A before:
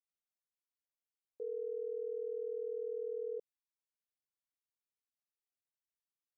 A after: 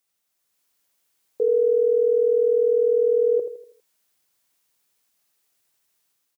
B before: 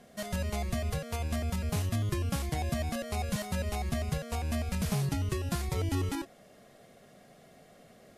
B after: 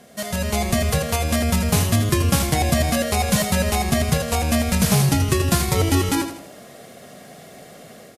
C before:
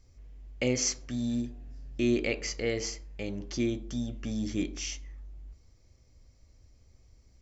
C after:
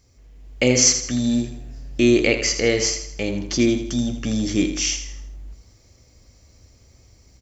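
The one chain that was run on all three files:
HPF 88 Hz 6 dB/oct; high shelf 5000 Hz +5 dB; AGC gain up to 6 dB; on a send: feedback echo 81 ms, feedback 42%, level -9.5 dB; on the sum: match loudness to -20 LUFS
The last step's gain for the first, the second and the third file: +14.5, +8.0, +5.5 dB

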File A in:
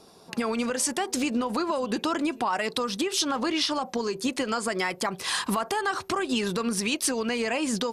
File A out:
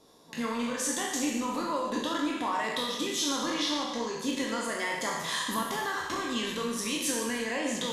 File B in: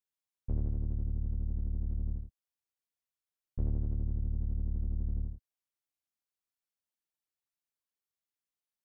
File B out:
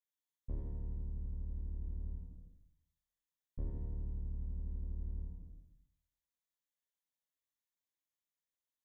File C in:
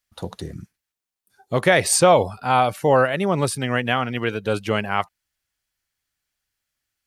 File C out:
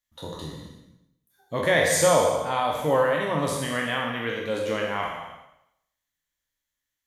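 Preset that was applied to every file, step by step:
spectral trails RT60 0.77 s; ripple EQ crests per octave 1.1, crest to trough 7 dB; non-linear reverb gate 0.38 s falling, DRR 2.5 dB; gain -9 dB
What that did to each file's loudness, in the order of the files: -3.0, -8.5, -4.0 LU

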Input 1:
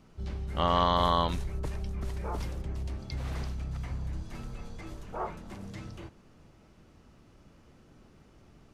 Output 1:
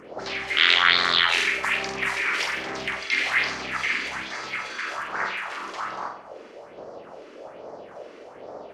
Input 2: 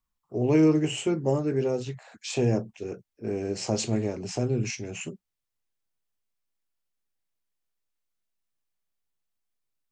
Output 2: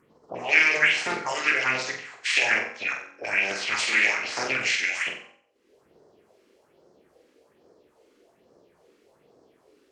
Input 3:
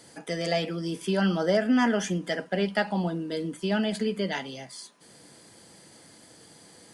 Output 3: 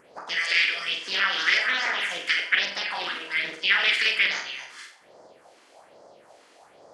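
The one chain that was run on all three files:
spectral limiter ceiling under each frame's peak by 24 dB; notch 3700 Hz, Q 25; limiter -17 dBFS; upward compressor, threshold -44 dBFS; de-hum 47.35 Hz, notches 34; phaser stages 4, 1.2 Hz, lowest notch 110–2800 Hz; auto-wah 380–2100 Hz, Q 2.8, up, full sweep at -38 dBFS; on a send: flutter echo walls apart 7.9 m, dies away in 0.5 s; on the sum: Doppler distortion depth 0.23 ms; match loudness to -23 LUFS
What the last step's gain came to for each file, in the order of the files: +22.0, +19.0, +14.5 dB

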